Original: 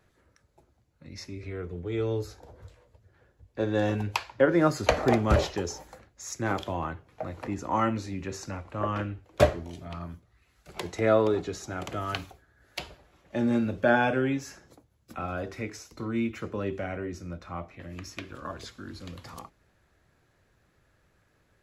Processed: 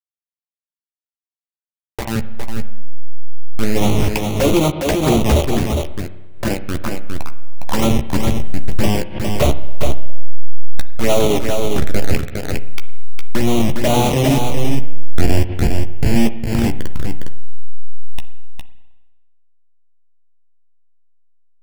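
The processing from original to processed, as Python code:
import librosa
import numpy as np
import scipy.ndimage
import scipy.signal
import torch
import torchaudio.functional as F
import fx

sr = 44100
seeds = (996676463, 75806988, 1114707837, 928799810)

p1 = fx.delta_hold(x, sr, step_db=-21.5)
p2 = fx.high_shelf(p1, sr, hz=11000.0, db=3.0)
p3 = fx.leveller(p2, sr, passes=5)
p4 = 10.0 ** (-21.0 / 20.0) * np.tanh(p3 / 10.0 ** (-21.0 / 20.0))
p5 = p3 + (p4 * 10.0 ** (-10.0 / 20.0))
p6 = fx.env_flanger(p5, sr, rest_ms=3.0, full_db=-7.5)
p7 = fx.doubler(p6, sr, ms=14.0, db=-8.0)
p8 = p7 + fx.echo_single(p7, sr, ms=409, db=-5.0, dry=0)
p9 = fx.rev_spring(p8, sr, rt60_s=1.1, pass_ms=(31, 52), chirp_ms=70, drr_db=13.0)
p10 = fx.pre_swell(p9, sr, db_per_s=84.0)
y = p10 * 10.0 ** (-4.5 / 20.0)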